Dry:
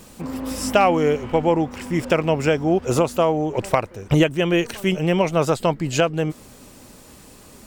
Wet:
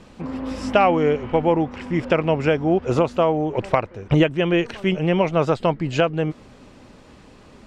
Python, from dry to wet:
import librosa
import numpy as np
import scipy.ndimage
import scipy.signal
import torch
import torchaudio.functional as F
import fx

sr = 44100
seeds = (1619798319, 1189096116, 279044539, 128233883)

y = scipy.signal.sosfilt(scipy.signal.butter(2, 3500.0, 'lowpass', fs=sr, output='sos'), x)